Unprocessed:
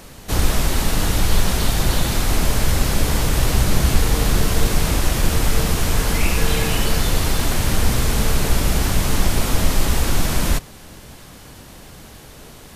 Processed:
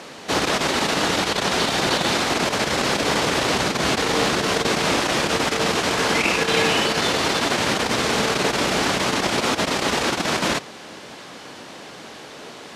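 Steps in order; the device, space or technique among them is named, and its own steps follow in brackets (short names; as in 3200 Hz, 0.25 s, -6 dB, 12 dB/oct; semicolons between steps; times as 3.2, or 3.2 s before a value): public-address speaker with an overloaded transformer (core saturation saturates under 46 Hz; BPF 290–5300 Hz); gain +6.5 dB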